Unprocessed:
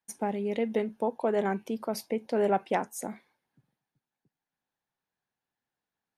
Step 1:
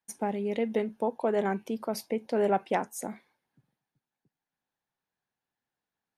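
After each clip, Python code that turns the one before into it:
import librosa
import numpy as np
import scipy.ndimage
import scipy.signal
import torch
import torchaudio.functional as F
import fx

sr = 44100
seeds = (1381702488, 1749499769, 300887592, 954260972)

y = x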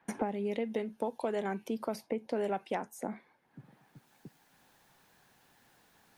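y = fx.band_squash(x, sr, depth_pct=100)
y = y * 10.0 ** (-6.0 / 20.0)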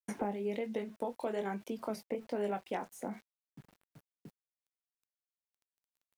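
y = fx.chorus_voices(x, sr, voices=2, hz=1.2, base_ms=22, depth_ms=3.0, mix_pct=30)
y = np.where(np.abs(y) >= 10.0 ** (-57.0 / 20.0), y, 0.0)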